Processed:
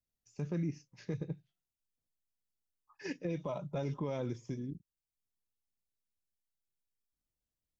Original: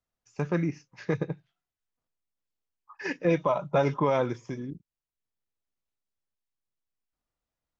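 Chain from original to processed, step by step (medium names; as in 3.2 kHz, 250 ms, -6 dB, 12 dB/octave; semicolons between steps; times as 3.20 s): peaking EQ 1.2 kHz -14 dB 2.5 oct; peak limiter -26 dBFS, peak gain reduction 8 dB; trim -1.5 dB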